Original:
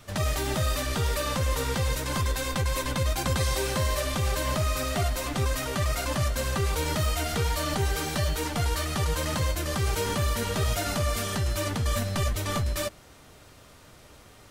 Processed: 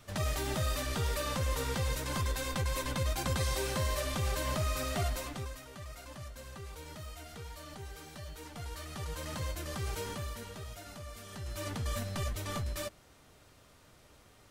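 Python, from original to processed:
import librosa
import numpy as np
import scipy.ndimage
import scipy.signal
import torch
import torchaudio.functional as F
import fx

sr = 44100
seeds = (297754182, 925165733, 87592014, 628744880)

y = fx.gain(x, sr, db=fx.line((5.14, -6.0), (5.63, -19.0), (8.2, -19.0), (9.46, -10.0), (9.99, -10.0), (10.7, -19.0), (11.22, -19.0), (11.69, -8.5)))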